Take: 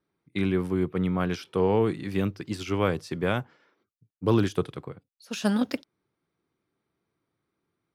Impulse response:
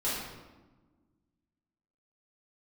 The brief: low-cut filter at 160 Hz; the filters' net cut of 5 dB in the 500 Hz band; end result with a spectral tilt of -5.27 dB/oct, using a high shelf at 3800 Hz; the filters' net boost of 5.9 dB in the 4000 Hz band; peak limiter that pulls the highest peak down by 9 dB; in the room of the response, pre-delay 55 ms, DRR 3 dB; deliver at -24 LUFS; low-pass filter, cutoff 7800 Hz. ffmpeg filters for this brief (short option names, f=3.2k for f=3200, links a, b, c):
-filter_complex "[0:a]highpass=160,lowpass=7.8k,equalizer=f=500:t=o:g=-6.5,highshelf=f=3.8k:g=8,equalizer=f=4k:t=o:g=3,alimiter=limit=-20dB:level=0:latency=1,asplit=2[a][b];[1:a]atrim=start_sample=2205,adelay=55[c];[b][c]afir=irnorm=-1:irlink=0,volume=-10.5dB[d];[a][d]amix=inputs=2:normalize=0,volume=5.5dB"